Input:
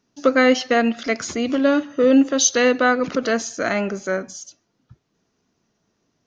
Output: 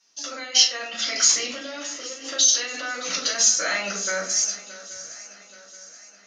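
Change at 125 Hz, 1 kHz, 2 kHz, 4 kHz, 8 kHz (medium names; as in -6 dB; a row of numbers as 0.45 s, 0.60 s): under -10 dB, -10.5 dB, -5.5 dB, +7.5 dB, no reading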